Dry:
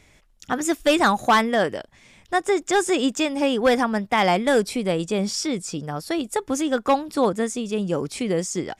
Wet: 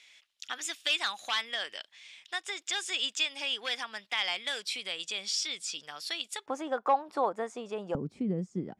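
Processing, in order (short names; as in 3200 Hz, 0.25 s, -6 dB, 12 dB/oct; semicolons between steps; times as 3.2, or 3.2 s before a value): tilt +1.5 dB/oct; compressor 2:1, threshold -27 dBFS, peak gain reduction 8 dB; band-pass 3300 Hz, Q 1.8, from 6.46 s 830 Hz, from 7.95 s 180 Hz; gain +3.5 dB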